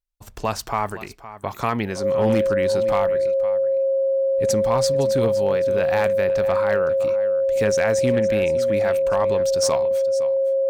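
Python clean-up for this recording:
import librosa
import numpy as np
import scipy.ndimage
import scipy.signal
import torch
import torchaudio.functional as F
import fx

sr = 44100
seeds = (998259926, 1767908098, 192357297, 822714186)

y = fx.fix_declip(x, sr, threshold_db=-11.5)
y = fx.notch(y, sr, hz=540.0, q=30.0)
y = fx.fix_echo_inverse(y, sr, delay_ms=513, level_db=-15.0)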